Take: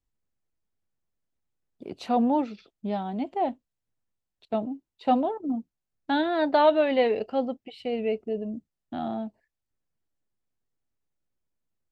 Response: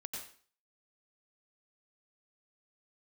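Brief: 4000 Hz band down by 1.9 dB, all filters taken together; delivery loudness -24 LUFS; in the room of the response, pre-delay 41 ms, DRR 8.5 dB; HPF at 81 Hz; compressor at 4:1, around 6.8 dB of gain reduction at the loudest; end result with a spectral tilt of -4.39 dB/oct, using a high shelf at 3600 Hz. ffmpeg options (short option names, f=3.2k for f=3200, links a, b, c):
-filter_complex "[0:a]highpass=81,highshelf=f=3.6k:g=6.5,equalizer=f=4k:t=o:g=-6.5,acompressor=threshold=-23dB:ratio=4,asplit=2[a][b];[1:a]atrim=start_sample=2205,adelay=41[c];[b][c]afir=irnorm=-1:irlink=0,volume=-7dB[d];[a][d]amix=inputs=2:normalize=0,volume=6dB"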